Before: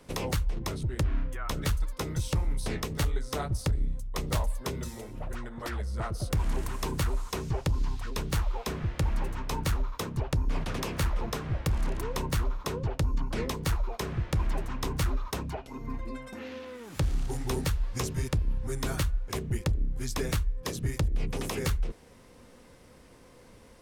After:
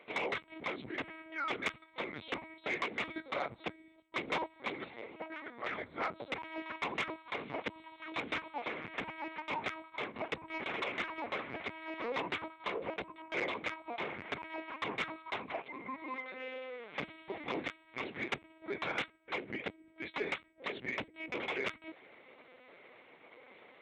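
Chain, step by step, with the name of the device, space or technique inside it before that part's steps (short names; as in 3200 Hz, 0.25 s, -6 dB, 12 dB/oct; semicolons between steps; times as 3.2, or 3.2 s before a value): talking toy (LPC vocoder at 8 kHz pitch kept; HPF 410 Hz 12 dB/oct; bell 2200 Hz +11.5 dB 0.25 oct; soft clip -25.5 dBFS, distortion -18 dB)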